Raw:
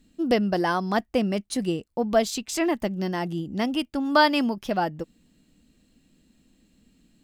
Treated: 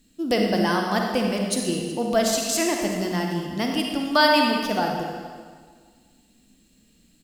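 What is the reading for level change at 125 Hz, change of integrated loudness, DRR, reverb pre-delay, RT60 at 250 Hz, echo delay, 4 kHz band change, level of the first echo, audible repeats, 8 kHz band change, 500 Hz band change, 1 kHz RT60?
+1.5 dB, +2.0 dB, 0.5 dB, 36 ms, 1.8 s, 0.373 s, +6.0 dB, -19.0 dB, 1, +8.5 dB, +2.0 dB, 1.7 s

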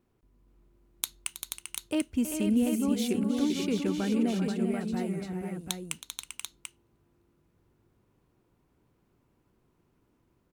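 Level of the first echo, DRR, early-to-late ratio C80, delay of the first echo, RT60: -13.0 dB, none, none, 0.321 s, none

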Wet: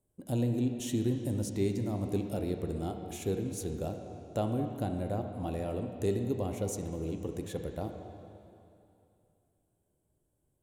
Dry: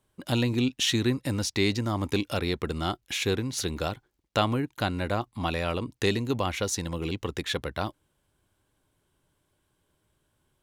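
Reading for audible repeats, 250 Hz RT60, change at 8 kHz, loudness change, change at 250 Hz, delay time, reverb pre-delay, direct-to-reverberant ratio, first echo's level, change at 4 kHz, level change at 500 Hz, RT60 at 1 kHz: none, 2.7 s, -9.0 dB, -5.5 dB, -3.5 dB, none, 5 ms, 4.0 dB, none, -19.0 dB, -4.0 dB, 2.7 s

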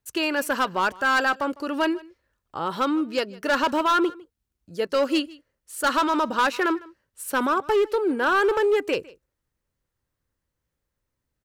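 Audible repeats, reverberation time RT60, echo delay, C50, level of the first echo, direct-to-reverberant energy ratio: 1, none, 0.154 s, none, -22.0 dB, none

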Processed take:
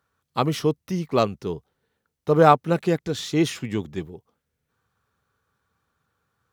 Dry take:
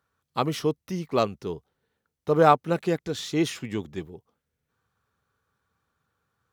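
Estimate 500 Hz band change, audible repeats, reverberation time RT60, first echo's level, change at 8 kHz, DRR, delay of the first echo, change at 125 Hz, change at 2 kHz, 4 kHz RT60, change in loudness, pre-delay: +3.0 dB, none, none, none, +2.5 dB, none, none, +5.0 dB, +2.5 dB, none, +3.0 dB, none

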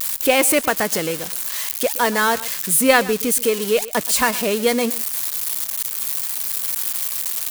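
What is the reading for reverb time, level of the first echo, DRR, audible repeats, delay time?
none, -18.0 dB, none, 1, 0.122 s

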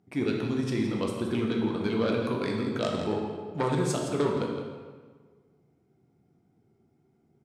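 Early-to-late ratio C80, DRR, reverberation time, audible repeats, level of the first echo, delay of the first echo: 4.0 dB, 0.0 dB, 1.5 s, 1, -10.5 dB, 0.166 s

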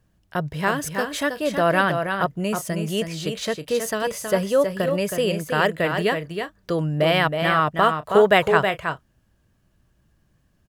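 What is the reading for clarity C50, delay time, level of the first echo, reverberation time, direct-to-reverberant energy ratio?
none, 0.32 s, -6.5 dB, none, none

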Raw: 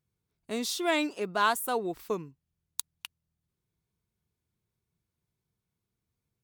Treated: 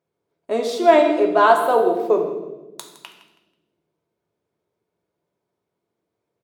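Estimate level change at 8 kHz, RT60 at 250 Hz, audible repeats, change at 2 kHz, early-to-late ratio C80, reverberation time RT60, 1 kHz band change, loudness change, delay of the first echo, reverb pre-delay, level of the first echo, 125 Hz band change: -3.0 dB, 2.0 s, 2, +7.0 dB, 8.0 dB, 1.1 s, +13.0 dB, +13.5 dB, 0.162 s, 3 ms, -14.0 dB, n/a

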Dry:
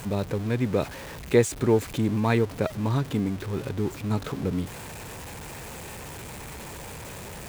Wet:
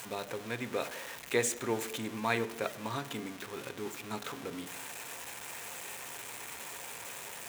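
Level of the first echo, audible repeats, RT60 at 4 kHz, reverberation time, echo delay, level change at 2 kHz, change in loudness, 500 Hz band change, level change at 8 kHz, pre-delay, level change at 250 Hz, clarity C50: none, none, 0.90 s, 0.85 s, none, -1.5 dB, -11.0 dB, -10.0 dB, -0.5 dB, 3 ms, -13.5 dB, 15.0 dB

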